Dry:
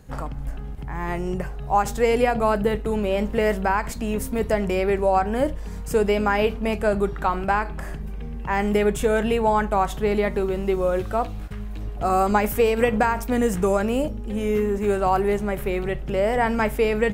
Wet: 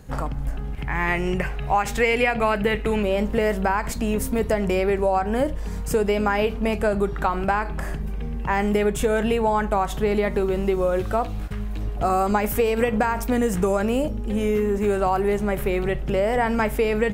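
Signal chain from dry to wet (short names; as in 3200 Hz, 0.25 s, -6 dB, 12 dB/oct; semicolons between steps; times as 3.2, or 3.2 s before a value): 0.73–3.03 bell 2300 Hz +12.5 dB 1.1 oct; compressor 3:1, threshold -22 dBFS, peak gain reduction 8 dB; gain +3.5 dB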